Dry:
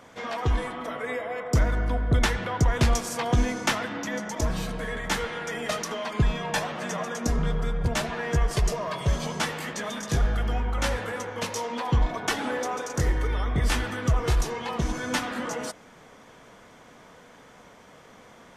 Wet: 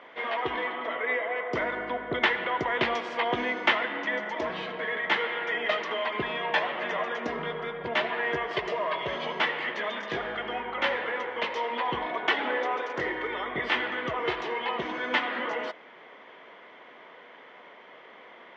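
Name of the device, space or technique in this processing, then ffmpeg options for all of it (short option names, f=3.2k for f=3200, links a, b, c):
phone earpiece: -af "highpass=350,equalizer=f=370:t=q:w=4:g=6,equalizer=f=610:t=q:w=4:g=3,equalizer=f=1k:t=q:w=4:g=4,equalizer=f=2k:t=q:w=4:g=9,equalizer=f=3.1k:t=q:w=4:g=6,lowpass=f=3.5k:w=0.5412,lowpass=f=3.5k:w=1.3066,volume=-1dB"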